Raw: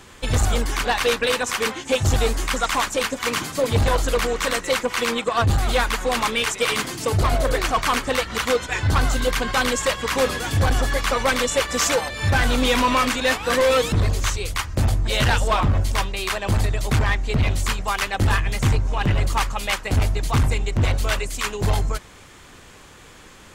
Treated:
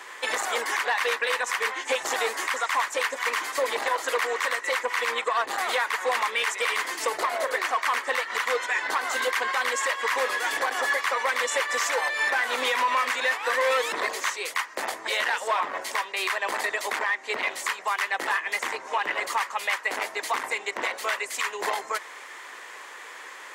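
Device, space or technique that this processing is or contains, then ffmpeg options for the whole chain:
laptop speaker: -af "highpass=f=400:w=0.5412,highpass=f=400:w=1.3066,equalizer=f=1k:t=o:w=0.53:g=7.5,equalizer=f=1.9k:t=o:w=0.53:g=11,alimiter=limit=-15.5dB:level=0:latency=1:release=290"

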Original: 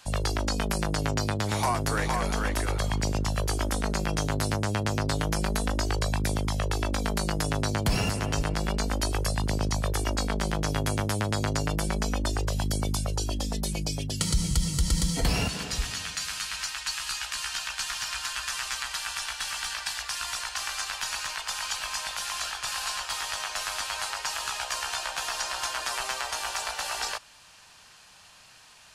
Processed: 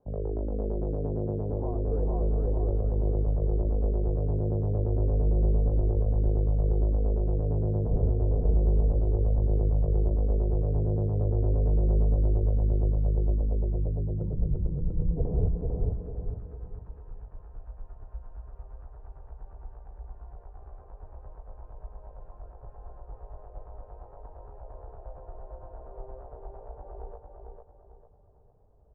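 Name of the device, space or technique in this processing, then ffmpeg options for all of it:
under water: -filter_complex "[0:a]asettb=1/sr,asplit=3[a][b][c];[a]atrim=end=5.204[d];[b]atrim=start=5.2:end=5.67,asetpts=PTS-STARTPTS,afade=t=in:d=0.004:c=qsin,afade=t=out:st=0.466:d=0.004:c=qsin,equalizer=f=1.1k:t=o:w=0.94:g=-5[e];[c]atrim=start=5.666[f];[d][e]acrossfade=d=0.004:c1=hsin:c2=qsin[g];[g][f]acrossfade=d=0.004:c1=qsin:c2=hsin,afftfilt=real='re*lt(hypot(re,im),0.501)':imag='im*lt(hypot(re,im),0.501)':win_size=1024:overlap=0.75,lowpass=f=590:w=0.5412,lowpass=f=590:w=1.3066,equalizer=f=430:t=o:w=0.58:g=10,asubboost=boost=7.5:cutoff=80,asplit=2[h][i];[i]adelay=449,lowpass=f=3.7k:p=1,volume=-3.5dB,asplit=2[j][k];[k]adelay=449,lowpass=f=3.7k:p=1,volume=0.38,asplit=2[l][m];[m]adelay=449,lowpass=f=3.7k:p=1,volume=0.38,asplit=2[n][o];[o]adelay=449,lowpass=f=3.7k:p=1,volume=0.38,asplit=2[p][q];[q]adelay=449,lowpass=f=3.7k:p=1,volume=0.38[r];[h][j][l][n][p][r]amix=inputs=6:normalize=0,volume=-4.5dB"

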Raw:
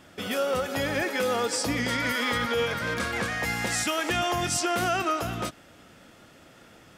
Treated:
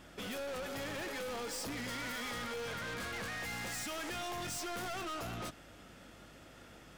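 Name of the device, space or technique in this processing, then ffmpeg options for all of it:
valve amplifier with mains hum: -af "aeval=exprs='(tanh(63.1*val(0)+0.15)-tanh(0.15))/63.1':c=same,aeval=exprs='val(0)+0.001*(sin(2*PI*50*n/s)+sin(2*PI*2*50*n/s)/2+sin(2*PI*3*50*n/s)/3+sin(2*PI*4*50*n/s)/4+sin(2*PI*5*50*n/s)/5)':c=same,volume=-3dB"

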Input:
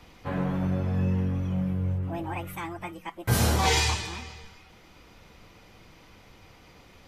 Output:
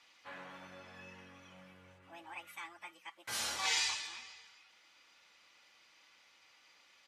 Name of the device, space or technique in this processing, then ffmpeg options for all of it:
piezo pickup straight into a mixer: -af "lowpass=6.8k,aderivative,equalizer=f=1.5k:w=0.49:g=4.5,highshelf=f=4.5k:g=-5.5,aecho=1:1:3.5:0.3"

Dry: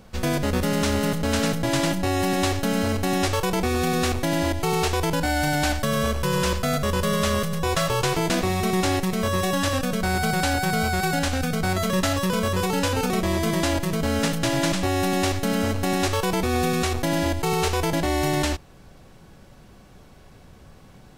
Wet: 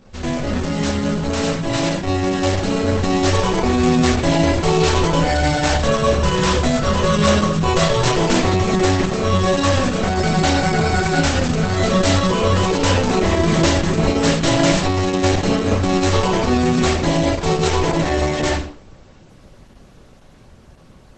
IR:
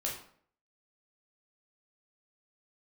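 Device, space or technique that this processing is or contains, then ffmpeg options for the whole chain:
speakerphone in a meeting room: -filter_complex "[1:a]atrim=start_sample=2205[a];[0:a][a]afir=irnorm=-1:irlink=0,dynaudnorm=f=280:g=21:m=10dB" -ar 48000 -c:a libopus -b:a 12k

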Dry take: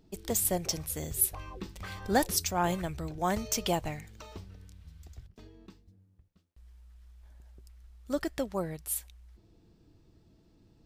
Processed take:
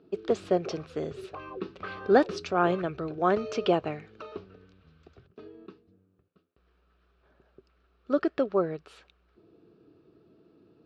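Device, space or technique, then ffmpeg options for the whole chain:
kitchen radio: -af "highpass=210,equalizer=f=210:t=q:w=4:g=-3,equalizer=f=410:t=q:w=4:g=8,equalizer=f=890:t=q:w=4:g=-8,equalizer=f=1.3k:t=q:w=4:g=6,equalizer=f=2k:t=q:w=4:g=-10,equalizer=f=3.3k:t=q:w=4:g=-6,lowpass=f=3.4k:w=0.5412,lowpass=f=3.4k:w=1.3066,volume=6dB"

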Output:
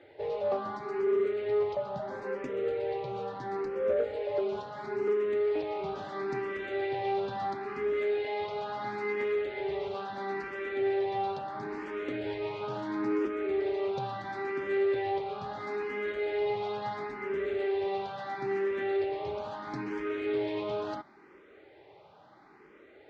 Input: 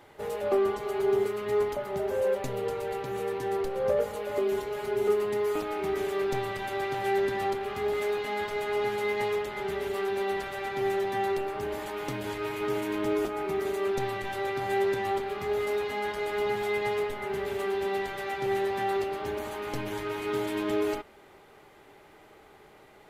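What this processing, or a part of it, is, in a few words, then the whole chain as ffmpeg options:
barber-pole phaser into a guitar amplifier: -filter_complex "[0:a]asplit=2[a][b];[b]afreqshift=0.74[c];[a][c]amix=inputs=2:normalize=1,asoftclip=type=tanh:threshold=-23dB,highpass=83,equalizer=f=330:t=q:w=4:g=4,equalizer=f=540:t=q:w=4:g=4,equalizer=f=3k:t=q:w=4:g=-4,lowpass=f=4.6k:w=0.5412,lowpass=f=4.6k:w=1.3066"

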